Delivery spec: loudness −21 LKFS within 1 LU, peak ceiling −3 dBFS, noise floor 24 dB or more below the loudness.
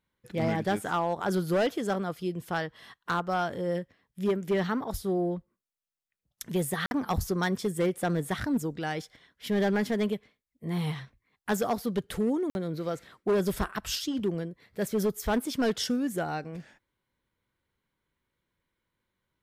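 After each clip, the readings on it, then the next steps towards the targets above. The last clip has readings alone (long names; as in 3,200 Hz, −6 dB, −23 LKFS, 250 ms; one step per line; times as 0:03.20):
share of clipped samples 1.1%; peaks flattened at −21.0 dBFS; number of dropouts 2; longest dropout 51 ms; integrated loudness −30.5 LKFS; sample peak −21.0 dBFS; target loudness −21.0 LKFS
→ clipped peaks rebuilt −21 dBFS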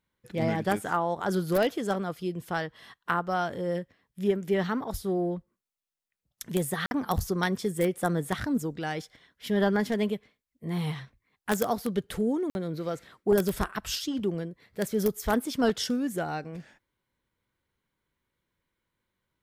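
share of clipped samples 0.0%; number of dropouts 2; longest dropout 51 ms
→ repair the gap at 0:06.86/0:12.50, 51 ms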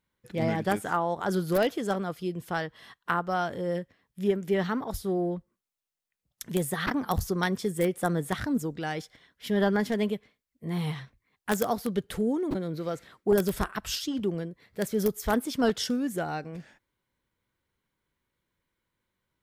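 number of dropouts 0; integrated loudness −29.5 LKFS; sample peak −12.0 dBFS; target loudness −21.0 LKFS
→ level +8.5 dB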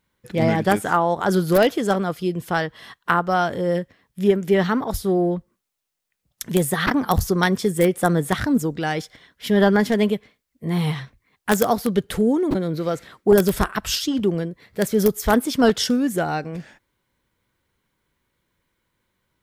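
integrated loudness −21.0 LKFS; sample peak −3.5 dBFS; background noise floor −77 dBFS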